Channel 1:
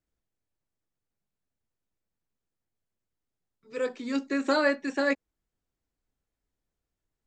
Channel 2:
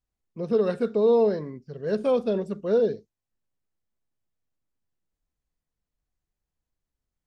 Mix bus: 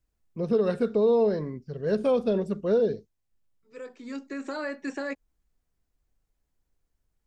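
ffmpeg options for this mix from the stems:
ffmpeg -i stem1.wav -i stem2.wav -filter_complex "[0:a]equalizer=frequency=3500:width_type=o:width=0.77:gain=-4,alimiter=limit=-24dB:level=0:latency=1:release=198,volume=1dB[link_01];[1:a]lowshelf=frequency=77:gain=10,acompressor=threshold=-22dB:ratio=2,volume=1dB,asplit=2[link_02][link_03];[link_03]apad=whole_len=320550[link_04];[link_01][link_04]sidechaincompress=threshold=-41dB:ratio=6:attack=46:release=1320[link_05];[link_05][link_02]amix=inputs=2:normalize=0" out.wav

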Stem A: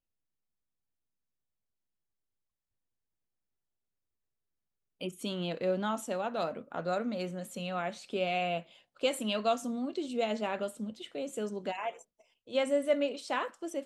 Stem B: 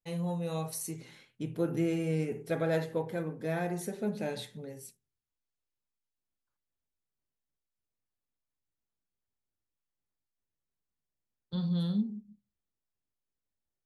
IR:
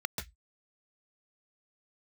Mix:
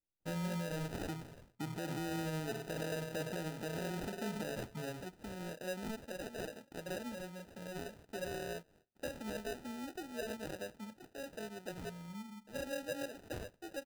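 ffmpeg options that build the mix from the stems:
-filter_complex "[0:a]volume=-9.5dB,asplit=2[link_01][link_02];[1:a]alimiter=level_in=3.5dB:limit=-24dB:level=0:latency=1:release=112,volume=-3.5dB,adelay=200,volume=1dB[link_03];[link_02]apad=whole_len=619915[link_04];[link_03][link_04]sidechaincompress=threshold=-58dB:ratio=16:attack=16:release=796[link_05];[link_01][link_05]amix=inputs=2:normalize=0,acrusher=samples=40:mix=1:aa=0.000001,alimiter=level_in=9dB:limit=-24dB:level=0:latency=1:release=81,volume=-9dB"

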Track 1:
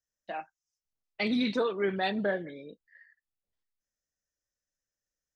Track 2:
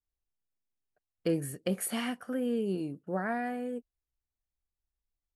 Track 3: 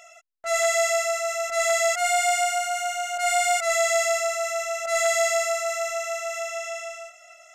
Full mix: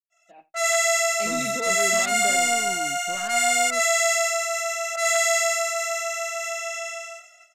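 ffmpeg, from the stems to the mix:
ffmpeg -i stem1.wav -i stem2.wav -i stem3.wav -filter_complex "[0:a]equalizer=frequency=1400:width_type=o:width=0.79:gain=-14,volume=-11.5dB,asplit=2[link_01][link_02];[link_02]volume=-14dB[link_03];[1:a]equalizer=frequency=1200:width=1.8:gain=11.5,asoftclip=type=tanh:threshold=-36dB,volume=-7dB[link_04];[2:a]highpass=frequency=1100:poles=1,adelay=100,volume=-3dB[link_05];[link_03]aecho=0:1:86:1[link_06];[link_01][link_04][link_05][link_06]amix=inputs=4:normalize=0,dynaudnorm=framelen=170:gausssize=5:maxgain=7dB,agate=range=-33dB:threshold=-45dB:ratio=3:detection=peak" out.wav

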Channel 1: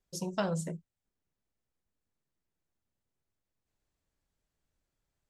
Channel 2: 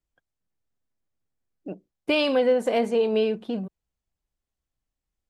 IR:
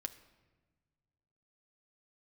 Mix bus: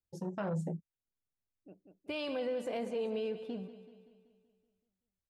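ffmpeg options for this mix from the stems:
-filter_complex "[0:a]afwtdn=0.00631,dynaudnorm=framelen=120:gausssize=11:maxgain=5dB,volume=-1.5dB,asplit=2[link_01][link_02];[1:a]equalizer=frequency=95:width_type=o:width=0.36:gain=13.5,volume=-12dB,asplit=2[link_03][link_04];[link_04]volume=-14dB[link_05];[link_02]apad=whole_len=233434[link_06];[link_03][link_06]sidechaincompress=threshold=-48dB:ratio=8:attack=7.2:release=1370[link_07];[link_05]aecho=0:1:190|380|570|760|950|1140|1330|1520:1|0.53|0.281|0.149|0.0789|0.0418|0.0222|0.0117[link_08];[link_01][link_07][link_08]amix=inputs=3:normalize=0,alimiter=level_in=4.5dB:limit=-24dB:level=0:latency=1:release=20,volume=-4.5dB"

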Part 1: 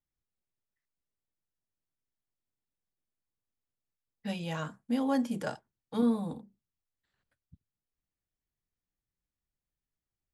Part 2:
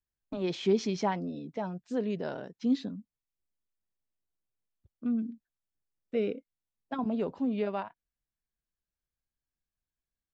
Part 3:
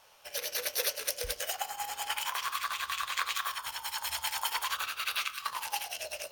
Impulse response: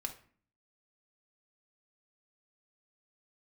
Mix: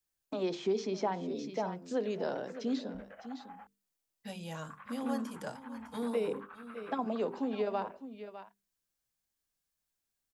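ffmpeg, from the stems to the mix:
-filter_complex "[0:a]highshelf=frequency=4800:gain=9.5,volume=-5.5dB,asplit=2[link_01][link_02];[link_02]volume=-17.5dB[link_03];[1:a]highpass=150,bass=frequency=250:gain=-4,treble=frequency=4000:gain=6,volume=1.5dB,asplit=3[link_04][link_05][link_06];[link_05]volume=-11dB[link_07];[link_06]volume=-14.5dB[link_08];[2:a]lowpass=frequency=1700:width=0.5412,lowpass=frequency=1700:width=1.3066,acompressor=threshold=-38dB:ratio=2.5,adelay=1700,volume=-9.5dB,asplit=3[link_09][link_10][link_11];[link_09]atrim=end=3.67,asetpts=PTS-STARTPTS,afade=type=out:start_time=3.666:duration=0.004:curve=hsin[link_12];[link_10]atrim=start=3.67:end=4.7,asetpts=PTS-STARTPTS,volume=0[link_13];[link_11]atrim=start=4.7,asetpts=PTS-STARTPTS,afade=type=in:duration=0.004:curve=hsin[link_14];[link_12][link_13][link_14]concat=n=3:v=0:a=1[link_15];[3:a]atrim=start_sample=2205[link_16];[link_07][link_16]afir=irnorm=-1:irlink=0[link_17];[link_03][link_08]amix=inputs=2:normalize=0,aecho=0:1:604:1[link_18];[link_01][link_04][link_15][link_17][link_18]amix=inputs=5:normalize=0,bandreject=frequency=50:width_type=h:width=6,bandreject=frequency=100:width_type=h:width=6,bandreject=frequency=150:width_type=h:width=6,bandreject=frequency=200:width_type=h:width=6,bandreject=frequency=250:width_type=h:width=6,bandreject=frequency=300:width_type=h:width=6,bandreject=frequency=350:width_type=h:width=6,bandreject=frequency=400:width_type=h:width=6,bandreject=frequency=450:width_type=h:width=6,acrossover=split=310|1400|4700[link_19][link_20][link_21][link_22];[link_19]acompressor=threshold=-41dB:ratio=4[link_23];[link_20]acompressor=threshold=-30dB:ratio=4[link_24];[link_21]acompressor=threshold=-52dB:ratio=4[link_25];[link_22]acompressor=threshold=-56dB:ratio=4[link_26];[link_23][link_24][link_25][link_26]amix=inputs=4:normalize=0"

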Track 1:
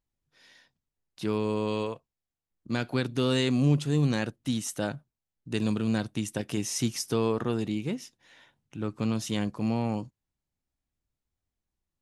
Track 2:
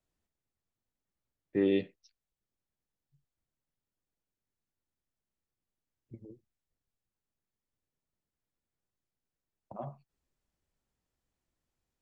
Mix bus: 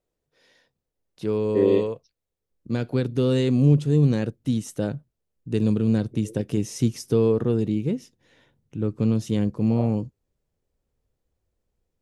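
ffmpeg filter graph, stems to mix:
ffmpeg -i stem1.wav -i stem2.wav -filter_complex "[0:a]asubboost=boost=5:cutoff=240,volume=-4.5dB[link_01];[1:a]volume=-1dB[link_02];[link_01][link_02]amix=inputs=2:normalize=0,equalizer=frequency=470:width=1.5:gain=13.5" out.wav

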